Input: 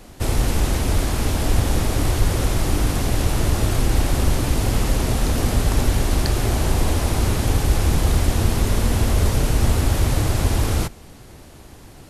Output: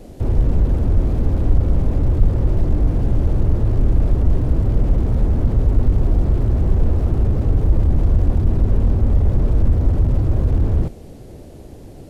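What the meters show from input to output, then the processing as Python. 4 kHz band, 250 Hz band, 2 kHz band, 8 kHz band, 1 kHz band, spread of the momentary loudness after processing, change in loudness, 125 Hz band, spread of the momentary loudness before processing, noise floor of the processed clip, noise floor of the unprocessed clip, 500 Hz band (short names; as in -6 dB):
under -20 dB, +0.5 dB, under -10 dB, under -25 dB, -8.5 dB, 2 LU, +2.0 dB, +3.0 dB, 2 LU, -38 dBFS, -43 dBFS, -2.0 dB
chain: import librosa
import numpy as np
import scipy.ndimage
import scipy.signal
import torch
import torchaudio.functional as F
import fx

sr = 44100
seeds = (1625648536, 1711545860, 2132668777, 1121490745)

y = fx.low_shelf_res(x, sr, hz=780.0, db=10.5, q=1.5)
y = fx.slew_limit(y, sr, full_power_hz=38.0)
y = y * 10.0 ** (-5.5 / 20.0)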